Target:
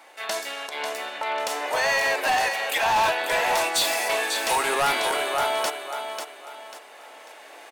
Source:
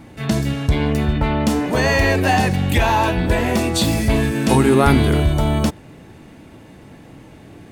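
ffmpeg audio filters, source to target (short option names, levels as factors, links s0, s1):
-filter_complex "[0:a]asettb=1/sr,asplit=3[s0][s1][s2];[s0]atrim=end=0.664[s3];[s1]atrim=start=0.66:end=2.96,asetpts=PTS-STARTPTS,afade=t=in:d=0.004:c=qsin,afade=t=out:st=2.296:d=0.004:c=qsin,acompressor=threshold=0.141:ratio=6[s4];[s2]atrim=start=2.956[s5];[s3][s4]acrossfade=d=0.004:c1=hsin:c2=qsin[s6];[s6][s5]acrossfade=d=0.004:c1=qsin:c2=hsin,aecho=1:1:543|1086|1629|2172:0.398|0.123|0.0383|0.0119,dynaudnorm=f=520:g=7:m=2.37,highpass=f=600:w=0.5412,highpass=f=600:w=1.3066,asoftclip=type=hard:threshold=0.126"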